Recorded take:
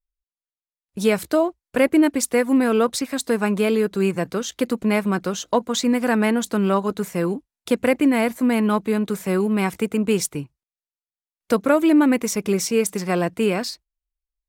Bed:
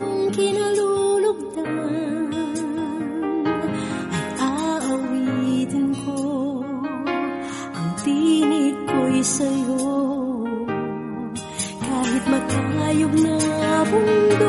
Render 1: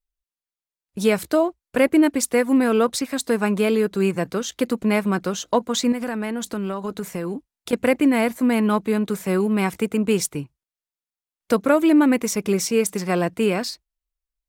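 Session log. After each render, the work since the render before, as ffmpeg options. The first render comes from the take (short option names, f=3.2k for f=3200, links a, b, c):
-filter_complex "[0:a]asettb=1/sr,asplit=3[a][b][c];[a]atrim=end=5.924[d];[b]atrim=start=5.92:end=7.73,asetpts=PTS-STARTPTS,afade=t=in:d=0.004:c=qsin,afade=t=out:st=1.806:d=0.004:c=qsin,acompressor=threshold=-23dB:ratio=6:attack=3.2:release=140:knee=1:detection=peak[e];[c]atrim=start=7.726[f];[d][e]acrossfade=d=0.004:c1=hsin:c2=qsin[g];[g][f]acrossfade=d=0.004:c1=qsin:c2=hsin"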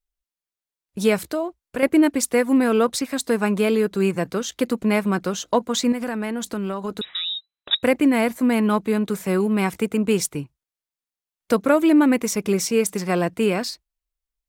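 -filter_complex "[0:a]asettb=1/sr,asplit=3[a][b][c];[a]atrim=end=1.214[d];[b]atrim=start=1.21:end=1.83,asetpts=PTS-STARTPTS,afade=t=in:d=0.004:c=qsin,afade=t=out:st=0.616:d=0.004:c=qsin,acompressor=threshold=-32dB:ratio=1.5:attack=3.2:release=140:knee=1:detection=peak[e];[c]atrim=start=1.826[f];[d][e]acrossfade=d=0.004:c1=hsin:c2=qsin[g];[g][f]acrossfade=d=0.004:c1=qsin:c2=hsin,asettb=1/sr,asplit=3[h][i][j];[h]atrim=end=7.014[k];[i]atrim=start=7.01:end=7.83,asetpts=PTS-STARTPTS,afade=t=in:d=0.004:c=qsin,afade=t=out:st=0.816:d=0.004:c=qsin,lowpass=f=3.4k:t=q:w=0.5098,lowpass=f=3.4k:t=q:w=0.6013,lowpass=f=3.4k:t=q:w=0.9,lowpass=f=3.4k:t=q:w=2.563,afreqshift=-4000[l];[j]atrim=start=7.826[m];[k][l]acrossfade=d=0.004:c1=hsin:c2=qsin[n];[n][m]acrossfade=d=0.004:c1=qsin:c2=hsin"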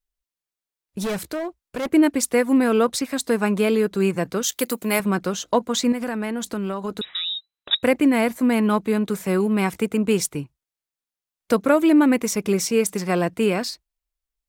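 -filter_complex "[0:a]asettb=1/sr,asplit=3[a][b][c];[a]atrim=end=1.024[d];[b]atrim=start=1.02:end=1.89,asetpts=PTS-STARTPTS,afade=t=in:d=0.004:c=qsin,afade=t=out:st=0.866:d=0.004:c=qsin,asoftclip=type=hard:threshold=-23dB[e];[c]atrim=start=1.886[f];[d][e]acrossfade=d=0.004:c1=hsin:c2=qsin[g];[g][f]acrossfade=d=0.004:c1=qsin:c2=hsin,asettb=1/sr,asplit=3[h][i][j];[h]atrim=end=4.434[k];[i]atrim=start=4.43:end=5,asetpts=PTS-STARTPTS,afade=t=in:d=0.004:c=qsin,afade=t=out:st=0.566:d=0.004:c=qsin,aemphasis=mode=production:type=bsi[l];[j]atrim=start=4.996[m];[k][l]acrossfade=d=0.004:c1=hsin:c2=qsin[n];[n][m]acrossfade=d=0.004:c1=qsin:c2=hsin"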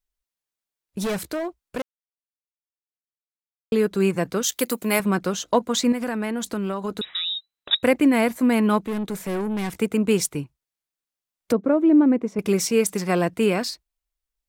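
-filter_complex "[0:a]asettb=1/sr,asplit=3[a][b][c];[a]atrim=end=8.864[d];[b]atrim=start=8.86:end=9.8,asetpts=PTS-STARTPTS,afade=t=in:d=0.004:c=qsin,afade=t=out:st=0.936:d=0.004:c=qsin,aeval=exprs='(tanh(14.1*val(0)+0.3)-tanh(0.3))/14.1':c=same[e];[c]atrim=start=9.796[f];[d][e]acrossfade=d=0.004:c1=hsin:c2=qsin[g];[g][f]acrossfade=d=0.004:c1=qsin:c2=hsin,asettb=1/sr,asplit=3[h][i][j];[h]atrim=end=11.524[k];[i]atrim=start=11.52:end=12.39,asetpts=PTS-STARTPTS,afade=t=in:d=0.004:c=qsin,afade=t=out:st=0.866:d=0.004:c=qsin,bandpass=f=300:t=q:w=0.75[l];[j]atrim=start=12.386[m];[k][l]acrossfade=d=0.004:c1=hsin:c2=qsin[n];[n][m]acrossfade=d=0.004:c1=qsin:c2=hsin,asplit=3[o][p][q];[o]atrim=end=1.82,asetpts=PTS-STARTPTS,afade=t=out:st=1.816:d=0.004:c=hsin[r];[p]atrim=start=1.82:end=3.72,asetpts=PTS-STARTPTS,volume=0[s];[q]atrim=start=3.72,asetpts=PTS-STARTPTS,afade=t=in:d=0.004:c=hsin[t];[r][s][t]concat=n=3:v=0:a=1"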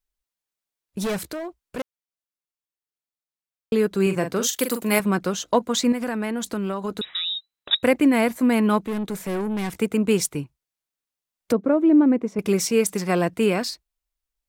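-filter_complex "[0:a]asettb=1/sr,asplit=3[a][b][c];[a]atrim=end=1.234[d];[b]atrim=start=1.23:end=1.78,asetpts=PTS-STARTPTS,afade=t=in:d=0.004:c=qsin,afade=t=out:st=0.546:d=0.004:c=qsin,acompressor=threshold=-30dB:ratio=2.5:attack=3.2:release=140:knee=1:detection=peak[e];[c]atrim=start=1.776[f];[d][e]acrossfade=d=0.004:c1=hsin:c2=qsin[g];[g][f]acrossfade=d=0.004:c1=qsin:c2=hsin,asettb=1/sr,asplit=3[h][i][j];[h]atrim=end=4.024[k];[i]atrim=start=4.02:end=4.99,asetpts=PTS-STARTPTS,afade=t=in:d=0.004:c=qsin,afade=t=out:st=0.966:d=0.004:c=qsin,asplit=2[l][m];[m]adelay=43,volume=-8dB[n];[l][n]amix=inputs=2:normalize=0,atrim=end_sample=42777[o];[j]atrim=start=4.986[p];[k][o]acrossfade=d=0.004:c1=hsin:c2=qsin[q];[q][p]acrossfade=d=0.004:c1=qsin:c2=hsin"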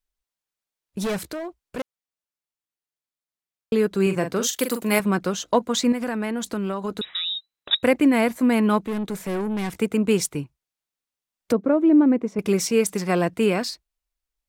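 -af "highshelf=f=10k:g=-3.5"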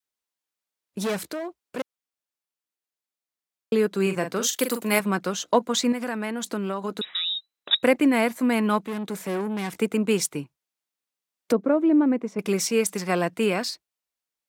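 -af "highpass=180,adynamicequalizer=threshold=0.0282:dfrequency=350:dqfactor=0.85:tfrequency=350:tqfactor=0.85:attack=5:release=100:ratio=0.375:range=2.5:mode=cutabove:tftype=bell"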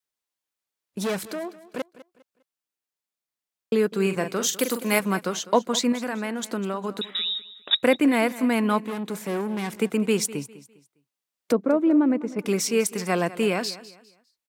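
-af "aecho=1:1:202|404|606:0.141|0.0438|0.0136"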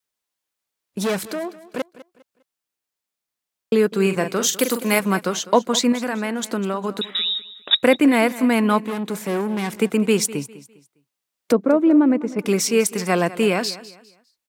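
-af "volume=4.5dB,alimiter=limit=-3dB:level=0:latency=1"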